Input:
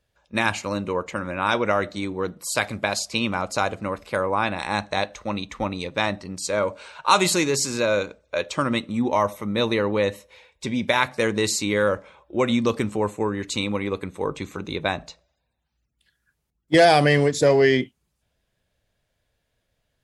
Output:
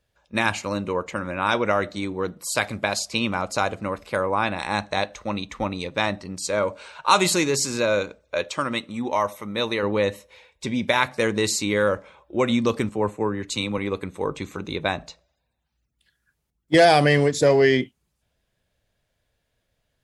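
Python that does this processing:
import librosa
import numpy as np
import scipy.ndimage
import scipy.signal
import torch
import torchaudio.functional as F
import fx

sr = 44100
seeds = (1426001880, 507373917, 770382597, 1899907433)

y = fx.low_shelf(x, sr, hz=410.0, db=-7.5, at=(8.49, 9.83))
y = fx.band_widen(y, sr, depth_pct=40, at=(12.89, 13.78))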